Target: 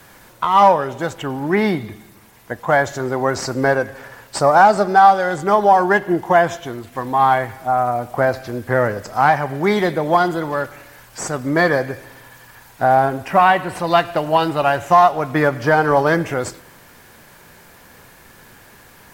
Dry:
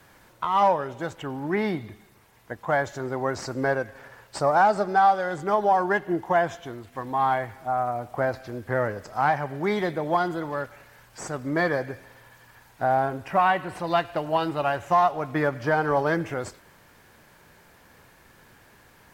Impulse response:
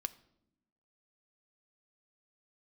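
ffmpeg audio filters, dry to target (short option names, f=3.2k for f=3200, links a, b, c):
-filter_complex "[0:a]highshelf=f=6.2k:g=5.5,asplit=2[a][b];[1:a]atrim=start_sample=2205[c];[b][c]afir=irnorm=-1:irlink=0,volume=2.5dB[d];[a][d]amix=inputs=2:normalize=0,volume=1.5dB"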